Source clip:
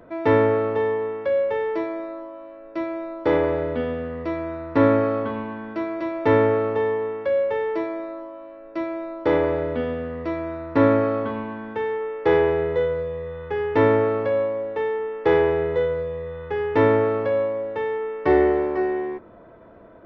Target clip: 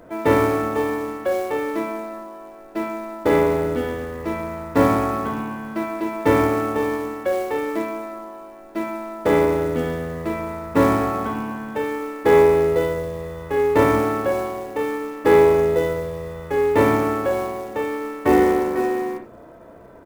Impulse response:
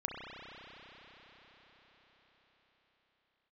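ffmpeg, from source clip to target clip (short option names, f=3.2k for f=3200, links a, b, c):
-filter_complex "[0:a]asplit=3[a][b][c];[b]asetrate=29433,aresample=44100,atempo=1.49831,volume=-11dB[d];[c]asetrate=58866,aresample=44100,atempo=0.749154,volume=-17dB[e];[a][d][e]amix=inputs=3:normalize=0,acrusher=bits=6:mode=log:mix=0:aa=0.000001[f];[1:a]atrim=start_sample=2205,atrim=end_sample=3969[g];[f][g]afir=irnorm=-1:irlink=0,volume=3dB"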